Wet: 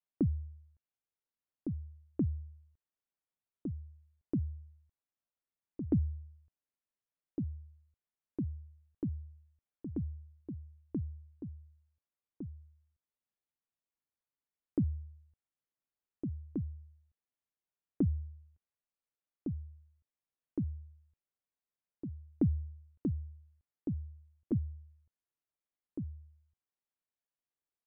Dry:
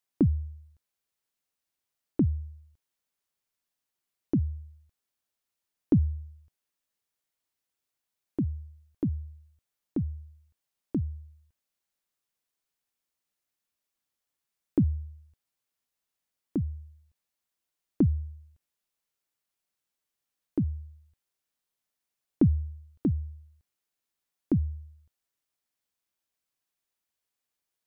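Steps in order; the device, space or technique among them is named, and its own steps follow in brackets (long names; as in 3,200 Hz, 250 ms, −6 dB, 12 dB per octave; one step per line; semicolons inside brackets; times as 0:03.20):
dynamic equaliser 960 Hz, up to +5 dB, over −46 dBFS, Q 1.1
shout across a valley (high-frequency loss of the air 480 metres; slap from a distant wall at 250 metres, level −7 dB)
level −7 dB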